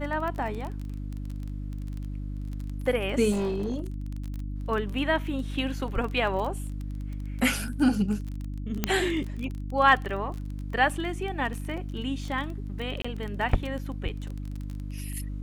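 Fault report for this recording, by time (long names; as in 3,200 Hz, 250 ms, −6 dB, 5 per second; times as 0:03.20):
surface crackle 23 per second −32 dBFS
mains hum 50 Hz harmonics 6 −34 dBFS
0:03.31–0:03.86: clipping −24.5 dBFS
0:08.84: click −9 dBFS
0:13.02–0:13.04: drop-out 25 ms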